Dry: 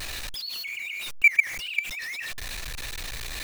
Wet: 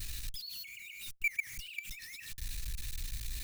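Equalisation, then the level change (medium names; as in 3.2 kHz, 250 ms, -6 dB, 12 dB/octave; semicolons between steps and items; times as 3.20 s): amplifier tone stack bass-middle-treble 6-0-2; bass shelf 390 Hz +10 dB; treble shelf 5.4 kHz +9.5 dB; +1.5 dB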